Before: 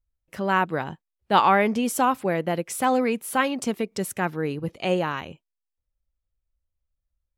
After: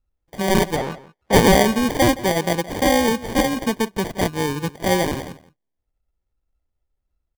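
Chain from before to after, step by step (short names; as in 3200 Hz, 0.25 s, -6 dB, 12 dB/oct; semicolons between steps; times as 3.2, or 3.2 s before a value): sample-and-hold 33×; 0.76–1.33 overdrive pedal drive 19 dB, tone 2400 Hz, clips at -22 dBFS; outdoor echo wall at 29 m, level -17 dB; gain +4.5 dB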